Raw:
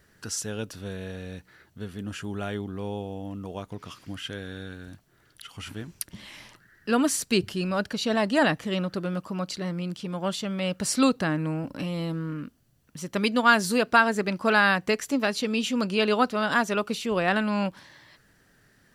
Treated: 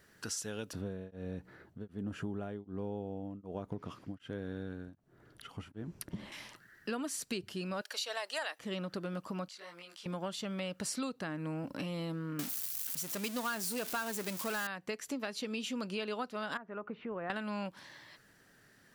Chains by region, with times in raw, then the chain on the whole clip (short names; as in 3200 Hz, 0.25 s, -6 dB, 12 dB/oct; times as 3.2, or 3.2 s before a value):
0.73–6.32 tilt shelf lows +9.5 dB, about 1400 Hz + beating tremolo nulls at 1.3 Hz
7.81–8.59 HPF 470 Hz 24 dB/oct + tilt +2.5 dB/oct
9.48–10.06 HPF 810 Hz + compressor 4:1, threshold -40 dBFS + detuned doubles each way 17 cents
12.39–14.67 switching spikes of -15.5 dBFS + power-law curve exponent 0.7
16.57–17.3 LPF 1800 Hz 24 dB/oct + compressor 2:1, threshold -39 dBFS
whole clip: low shelf 100 Hz -10.5 dB; compressor 6:1, threshold -34 dBFS; gain -1.5 dB